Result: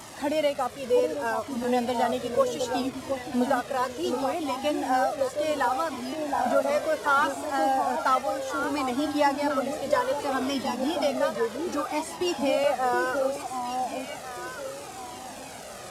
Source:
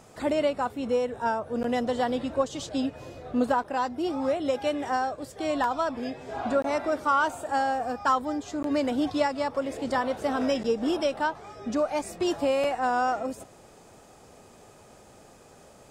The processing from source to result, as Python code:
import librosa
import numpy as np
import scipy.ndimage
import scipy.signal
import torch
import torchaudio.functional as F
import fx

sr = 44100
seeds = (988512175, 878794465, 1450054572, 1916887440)

p1 = fx.delta_mod(x, sr, bps=64000, step_db=-37.0)
p2 = fx.highpass(p1, sr, hz=190.0, slope=6)
p3 = p2 + fx.echo_alternate(p2, sr, ms=719, hz=880.0, feedback_pct=52, wet_db=-3.0, dry=0)
p4 = fx.comb_cascade(p3, sr, direction='falling', hz=0.66)
y = F.gain(torch.from_numpy(p4), 5.5).numpy()